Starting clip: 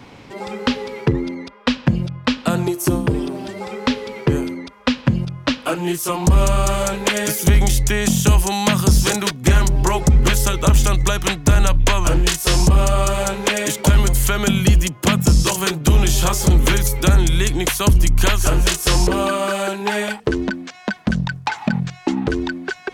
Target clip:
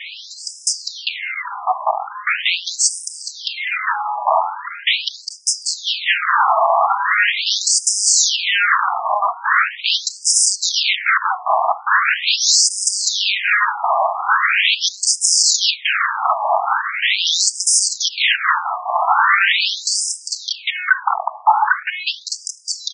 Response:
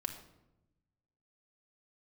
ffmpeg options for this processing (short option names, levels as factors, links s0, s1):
-filter_complex "[0:a]asettb=1/sr,asplit=3[s0][s1][s2];[s0]atrim=end=7.144[s3];[s1]atrim=start=7.14:end=8.05,asetpts=PTS-STARTPTS,afade=t=in:d=0.004:c=qsin,afade=t=out:st=0.906:d=0.004:c=qsin,lowshelf=f=71:g=8[s4];[s2]atrim=start=8.046[s5];[s3][s4]acrossfade=d=0.004:c1=hsin:c2=qsin[s6];[s6][s5]acrossfade=d=0.004:c1=qsin:c2=hsin,aeval=exprs='0.473*sin(PI/2*5.01*val(0)/0.473)':c=same,asplit=5[s7][s8][s9][s10][s11];[s8]adelay=435,afreqshift=75,volume=0.112[s12];[s9]adelay=870,afreqshift=150,volume=0.0582[s13];[s10]adelay=1305,afreqshift=225,volume=0.0302[s14];[s11]adelay=1740,afreqshift=300,volume=0.0158[s15];[s7][s12][s13][s14][s15]amix=inputs=5:normalize=0,asplit=2[s16][s17];[1:a]atrim=start_sample=2205,afade=t=out:st=0.16:d=0.01,atrim=end_sample=7497[s18];[s17][s18]afir=irnorm=-1:irlink=0,volume=0.316[s19];[s16][s19]amix=inputs=2:normalize=0,afftfilt=real='re*between(b*sr/1024,850*pow(7000/850,0.5+0.5*sin(2*PI*0.41*pts/sr))/1.41,850*pow(7000/850,0.5+0.5*sin(2*PI*0.41*pts/sr))*1.41)':imag='im*between(b*sr/1024,850*pow(7000/850,0.5+0.5*sin(2*PI*0.41*pts/sr))/1.41,850*pow(7000/850,0.5+0.5*sin(2*PI*0.41*pts/sr))*1.41)':win_size=1024:overlap=0.75"